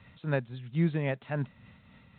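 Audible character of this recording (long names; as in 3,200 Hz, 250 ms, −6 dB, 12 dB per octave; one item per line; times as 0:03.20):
tremolo triangle 3.7 Hz, depth 50%
mu-law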